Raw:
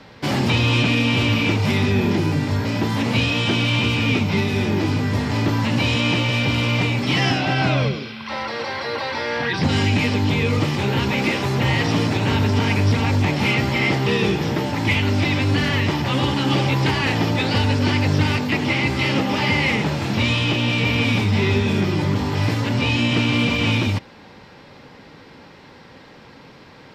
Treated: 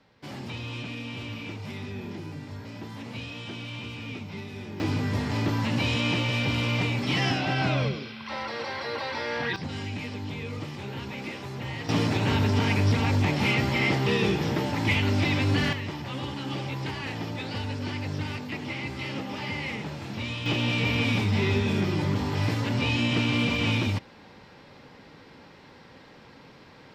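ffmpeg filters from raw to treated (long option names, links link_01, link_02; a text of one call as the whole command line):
ffmpeg -i in.wav -af "asetnsamples=nb_out_samples=441:pad=0,asendcmd='4.8 volume volume -6.5dB;9.56 volume volume -15.5dB;11.89 volume volume -5dB;15.73 volume volume -13.5dB;20.46 volume volume -6dB',volume=-18dB" out.wav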